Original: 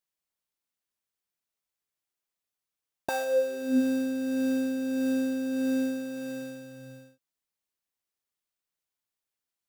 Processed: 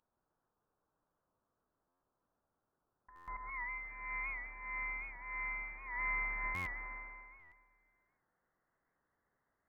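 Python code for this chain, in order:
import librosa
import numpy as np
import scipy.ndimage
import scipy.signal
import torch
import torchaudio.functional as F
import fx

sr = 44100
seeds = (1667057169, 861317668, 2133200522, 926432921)

y = fx.highpass(x, sr, hz=fx.steps((0.0, 1300.0), (3.38, 640.0)), slope=24)
y = fx.over_compress(y, sr, threshold_db=-47.0, ratio=-0.5)
y = fx.echo_feedback(y, sr, ms=137, feedback_pct=56, wet_db=-3.0)
y = fx.freq_invert(y, sr, carrier_hz=2600)
y = fx.buffer_glitch(y, sr, at_s=(1.88, 3.15, 6.54, 7.39), block=512, repeats=10)
y = fx.record_warp(y, sr, rpm=78.0, depth_cents=100.0)
y = y * 10.0 ** (7.0 / 20.0)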